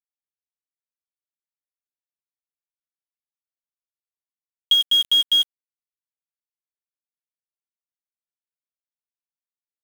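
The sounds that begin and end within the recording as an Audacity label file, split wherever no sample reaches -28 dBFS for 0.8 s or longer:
4.710000	5.430000	sound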